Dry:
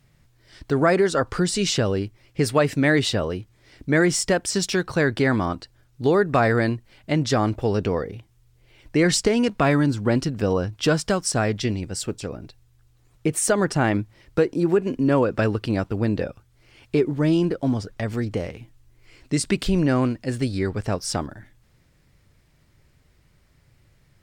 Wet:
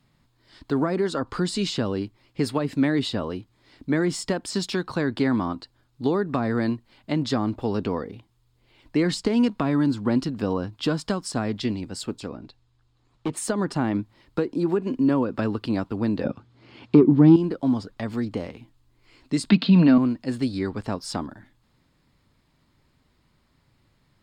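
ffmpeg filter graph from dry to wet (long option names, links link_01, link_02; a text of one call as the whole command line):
ffmpeg -i in.wav -filter_complex "[0:a]asettb=1/sr,asplit=3[link_01][link_02][link_03];[link_01]atrim=end=12.284[link_04];[link_02]atrim=start=12.28:end=13.37,asetpts=PTS-STARTPTS,afade=type=in:duration=0.004:curve=qsin,afade=type=out:start_time=1.086:duration=0.004:curve=qsin,lowpass=6700,volume=19.5dB,asoftclip=hard,volume=-19.5dB[link_05];[link_03]atrim=start=13.366[link_06];[link_04][link_05]acrossfade=duration=0.004:curve1=hsin:curve2=qsin[link_07];[link_07][link_06]acrossfade=duration=0.004:curve1=qsin:curve2=hsin,asettb=1/sr,asplit=3[link_08][link_09][link_10];[link_08]atrim=end=16.244[link_11];[link_09]atrim=start=16.24:end=17.36,asetpts=PTS-STARTPTS,afade=type=in:duration=0.004:curve=qsin,afade=type=out:start_time=1.116:duration=0.004:curve=qsin,lowshelf=frequency=390:gain=10,acontrast=62,highpass=140,lowpass=4900[link_12];[link_10]atrim=start=17.356[link_13];[link_11][link_12]acrossfade=duration=0.004:curve1=hsin:curve2=qsin[link_14];[link_14][link_13]acrossfade=duration=0.004:curve1=qsin:curve2=hsin,asettb=1/sr,asplit=3[link_15][link_16][link_17];[link_15]atrim=end=19.504[link_18];[link_16]atrim=start=19.5:end=19.98,asetpts=PTS-STARTPTS,afade=type=in:duration=0.004:curve=qsin,afade=type=out:start_time=0.476:duration=0.004:curve=qsin,highpass=frequency=140:width=0.5412,highpass=frequency=140:width=1.3066,equalizer=frequency=170:width_type=q:width=4:gain=5,equalizer=frequency=390:width_type=q:width=4:gain=-7,equalizer=frequency=640:width_type=q:width=4:gain=4,equalizer=frequency=1500:width_type=q:width=4:gain=3,equalizer=frequency=2600:width_type=q:width=4:gain=6,equalizer=frequency=4100:width_type=q:width=4:gain=8,lowpass=frequency=4400:width=0.5412,lowpass=frequency=4400:width=1.3066,aecho=1:1:4.4:0.37,atrim=end_sample=21168,acontrast=46[link_19];[link_17]atrim=start=19.976[link_20];[link_18][link_19]acrossfade=duration=0.004:curve1=hsin:curve2=qsin[link_21];[link_21][link_20]acrossfade=duration=0.004:curve1=qsin:curve2=hsin,equalizer=frequency=250:width_type=o:width=1:gain=10,equalizer=frequency=1000:width_type=o:width=1:gain=10,equalizer=frequency=4000:width_type=o:width=1:gain=8,acrossover=split=410[link_22][link_23];[link_23]acompressor=threshold=-18dB:ratio=10[link_24];[link_22][link_24]amix=inputs=2:normalize=0,bandreject=frequency=5800:width=9.9,volume=-8.5dB" out.wav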